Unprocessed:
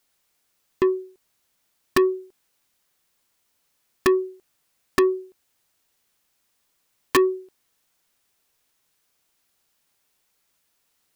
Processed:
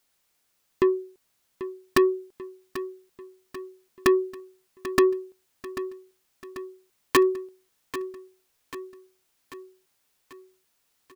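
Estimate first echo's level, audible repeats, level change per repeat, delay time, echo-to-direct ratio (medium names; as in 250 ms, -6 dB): -13.5 dB, 5, -5.5 dB, 790 ms, -12.0 dB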